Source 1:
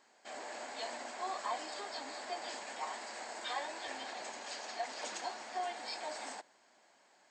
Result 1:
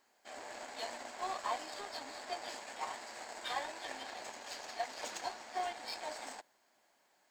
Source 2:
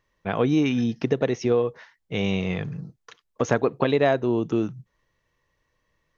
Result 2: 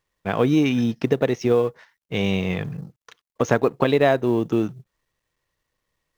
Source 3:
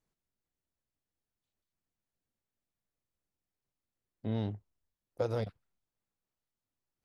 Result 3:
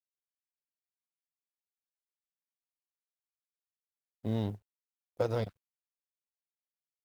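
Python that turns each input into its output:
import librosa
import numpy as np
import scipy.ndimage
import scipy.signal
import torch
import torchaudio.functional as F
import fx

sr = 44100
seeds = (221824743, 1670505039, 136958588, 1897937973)

y = fx.law_mismatch(x, sr, coded='A')
y = F.gain(torch.from_numpy(y), 3.0).numpy()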